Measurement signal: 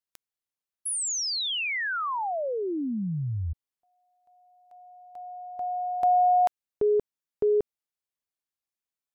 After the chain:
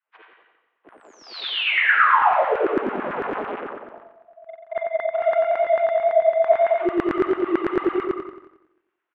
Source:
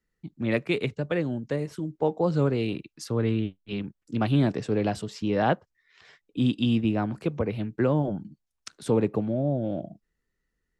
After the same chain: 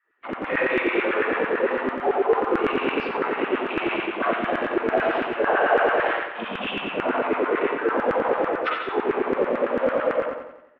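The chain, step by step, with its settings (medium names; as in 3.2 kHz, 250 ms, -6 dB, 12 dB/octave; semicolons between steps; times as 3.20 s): phase randomisation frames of 50 ms; spring tank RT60 1.1 s, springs 39/49/59 ms, chirp 20 ms, DRR -7 dB; in parallel at -12 dB: fuzz box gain 37 dB, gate -46 dBFS; on the sum: mistuned SSB -53 Hz 270–3000 Hz; reverse; compression 8:1, threshold -27 dBFS; reverse; LFO high-pass saw down 9 Hz 300–1700 Hz; peaking EQ 1.3 kHz +5 dB 1.3 oct; feedback delay 90 ms, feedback 49%, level -7.5 dB; trim +4.5 dB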